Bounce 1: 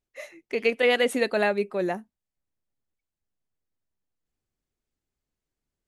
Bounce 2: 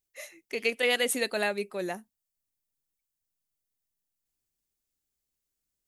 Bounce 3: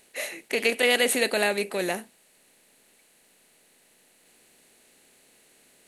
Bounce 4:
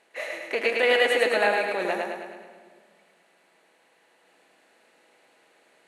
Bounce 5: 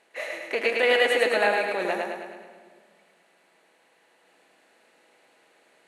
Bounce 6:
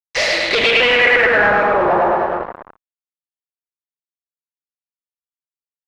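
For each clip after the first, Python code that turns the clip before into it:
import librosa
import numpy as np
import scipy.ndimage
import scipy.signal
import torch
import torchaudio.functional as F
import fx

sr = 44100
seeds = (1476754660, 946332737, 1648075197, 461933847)

y1 = scipy.signal.lfilter([1.0, -0.8], [1.0], x)
y1 = F.gain(torch.from_numpy(y1), 7.0).numpy()
y2 = fx.bin_compress(y1, sr, power=0.6)
y2 = F.gain(torch.from_numpy(y2), 2.5).numpy()
y3 = fx.bandpass_q(y2, sr, hz=970.0, q=0.84)
y3 = fx.echo_feedback(y3, sr, ms=106, feedback_pct=55, wet_db=-3)
y3 = fx.room_shoebox(y3, sr, seeds[0], volume_m3=3800.0, walls='mixed', distance_m=0.67)
y3 = F.gain(torch.from_numpy(y3), 3.5).numpy()
y4 = y3
y5 = fx.echo_tape(y4, sr, ms=181, feedback_pct=83, wet_db=-18.0, lp_hz=1400.0, drive_db=12.0, wow_cents=39)
y5 = fx.fuzz(y5, sr, gain_db=40.0, gate_db=-42.0)
y5 = fx.filter_sweep_lowpass(y5, sr, from_hz=5200.0, to_hz=1100.0, start_s=0.23, end_s=1.8, q=3.2)
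y5 = F.gain(torch.from_numpy(y5), -2.0).numpy()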